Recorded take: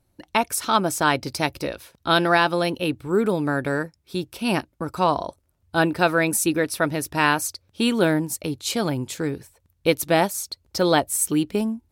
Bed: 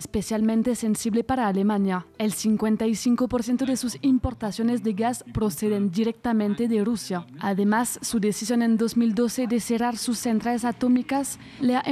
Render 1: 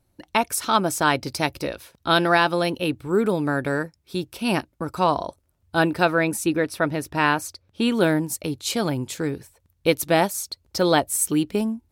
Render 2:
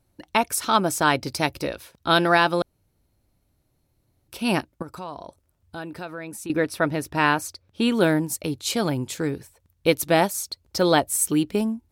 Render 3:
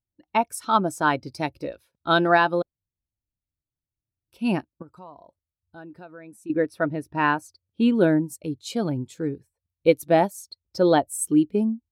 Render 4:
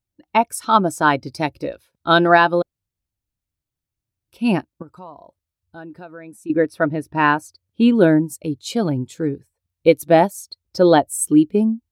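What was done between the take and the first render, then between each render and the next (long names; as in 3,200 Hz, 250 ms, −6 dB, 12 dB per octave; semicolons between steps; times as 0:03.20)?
0:06.05–0:07.92: high-shelf EQ 4,500 Hz −8.5 dB
0:02.62–0:04.28: fill with room tone; 0:04.82–0:06.50: downward compressor 2.5 to 1, threshold −38 dBFS
every bin expanded away from the loudest bin 1.5 to 1
level +5.5 dB; brickwall limiter −1 dBFS, peak gain reduction 1.5 dB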